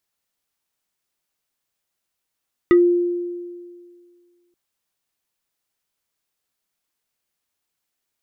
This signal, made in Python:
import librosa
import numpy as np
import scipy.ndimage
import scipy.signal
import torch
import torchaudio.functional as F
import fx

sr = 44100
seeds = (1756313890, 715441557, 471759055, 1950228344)

y = fx.fm2(sr, length_s=1.83, level_db=-8.0, carrier_hz=350.0, ratio=4.57, index=0.52, index_s=0.14, decay_s=1.97, shape='exponential')